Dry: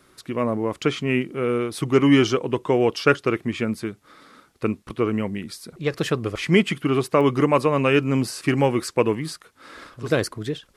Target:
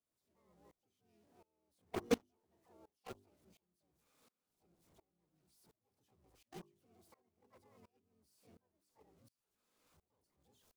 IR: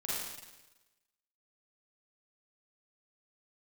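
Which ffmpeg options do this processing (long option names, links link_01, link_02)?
-filter_complex "[0:a]aeval=exprs='val(0)+0.5*0.15*sgn(val(0))':channel_layout=same,agate=range=-55dB:threshold=-7dB:ratio=16:detection=peak,highpass=72,equalizer=frequency=1800:width_type=o:width=1.2:gain=-11.5,afreqshift=-43,asplit=3[link_01][link_02][link_03];[link_02]asetrate=52444,aresample=44100,atempo=0.840896,volume=-7dB[link_04];[link_03]asetrate=88200,aresample=44100,atempo=0.5,volume=-2dB[link_05];[link_01][link_04][link_05]amix=inputs=3:normalize=0,bandreject=frequency=50:width_type=h:width=6,bandreject=frequency=100:width_type=h:width=6,bandreject=frequency=150:width_type=h:width=6,bandreject=frequency=200:width_type=h:width=6,bandreject=frequency=250:width_type=h:width=6,bandreject=frequency=300:width_type=h:width=6,bandreject=frequency=350:width_type=h:width=6,bandreject=frequency=400:width_type=h:width=6,aeval=exprs='0.02*(cos(1*acos(clip(val(0)/0.02,-1,1)))-cos(1*PI/2))+0.00141*(cos(3*acos(clip(val(0)/0.02,-1,1)))-cos(3*PI/2))+0.00398*(cos(7*acos(clip(val(0)/0.02,-1,1)))-cos(7*PI/2))':channel_layout=same,aeval=exprs='val(0)*pow(10,-27*if(lt(mod(-1.4*n/s,1),2*abs(-1.4)/1000),1-mod(-1.4*n/s,1)/(2*abs(-1.4)/1000),(mod(-1.4*n/s,1)-2*abs(-1.4)/1000)/(1-2*abs(-1.4)/1000))/20)':channel_layout=same,volume=12dB"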